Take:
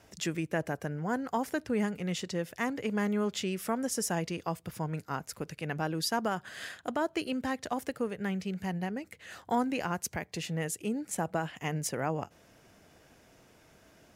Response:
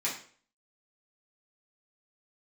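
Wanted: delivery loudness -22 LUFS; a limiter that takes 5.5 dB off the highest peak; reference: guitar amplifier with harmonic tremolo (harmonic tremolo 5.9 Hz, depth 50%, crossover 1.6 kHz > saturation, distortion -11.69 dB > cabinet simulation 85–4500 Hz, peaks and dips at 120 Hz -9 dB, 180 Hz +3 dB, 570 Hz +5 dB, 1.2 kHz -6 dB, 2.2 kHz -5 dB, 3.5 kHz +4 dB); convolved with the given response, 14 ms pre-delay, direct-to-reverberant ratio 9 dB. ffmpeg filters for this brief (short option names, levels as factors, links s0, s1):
-filter_complex "[0:a]alimiter=limit=0.0631:level=0:latency=1,asplit=2[s0][s1];[1:a]atrim=start_sample=2205,adelay=14[s2];[s1][s2]afir=irnorm=-1:irlink=0,volume=0.168[s3];[s0][s3]amix=inputs=2:normalize=0,acrossover=split=1600[s4][s5];[s4]aeval=exprs='val(0)*(1-0.5/2+0.5/2*cos(2*PI*5.9*n/s))':c=same[s6];[s5]aeval=exprs='val(0)*(1-0.5/2-0.5/2*cos(2*PI*5.9*n/s))':c=same[s7];[s6][s7]amix=inputs=2:normalize=0,asoftclip=threshold=0.0211,highpass=85,equalizer=f=120:t=q:w=4:g=-9,equalizer=f=180:t=q:w=4:g=3,equalizer=f=570:t=q:w=4:g=5,equalizer=f=1200:t=q:w=4:g=-6,equalizer=f=2200:t=q:w=4:g=-5,equalizer=f=3500:t=q:w=4:g=4,lowpass=f=4500:w=0.5412,lowpass=f=4500:w=1.3066,volume=8.41"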